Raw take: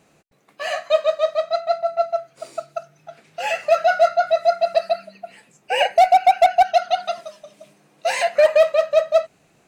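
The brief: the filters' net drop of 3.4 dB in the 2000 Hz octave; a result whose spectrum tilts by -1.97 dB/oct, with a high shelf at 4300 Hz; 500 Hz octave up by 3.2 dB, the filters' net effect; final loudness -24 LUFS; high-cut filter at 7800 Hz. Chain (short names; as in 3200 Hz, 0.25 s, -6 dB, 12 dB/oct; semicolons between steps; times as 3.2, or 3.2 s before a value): LPF 7800 Hz; bell 500 Hz +5.5 dB; bell 2000 Hz -3.5 dB; high shelf 4300 Hz -6.5 dB; gain -7.5 dB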